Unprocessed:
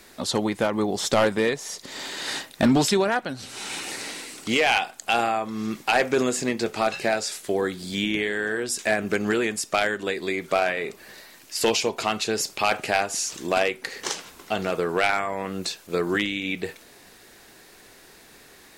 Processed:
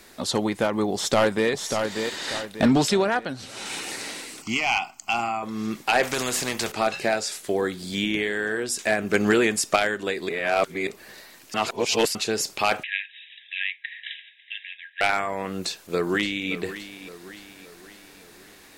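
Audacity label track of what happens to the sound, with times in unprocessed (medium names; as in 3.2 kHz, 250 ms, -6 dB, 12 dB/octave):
0.940000	1.500000	echo throw 590 ms, feedback 40%, level -6 dB
2.160000	3.660000	treble shelf 9 kHz -6 dB
4.420000	5.430000	static phaser centre 2.5 kHz, stages 8
6.030000	6.720000	spectrum-flattening compressor 2:1
7.430000	8.440000	short-mantissa float mantissa of 6-bit
9.140000	9.760000	gain +4 dB
10.290000	10.870000	reverse
11.540000	12.150000	reverse
12.830000	15.010000	brick-wall FIR band-pass 1.6–3.9 kHz
15.520000	16.510000	echo throw 570 ms, feedback 50%, level -13 dB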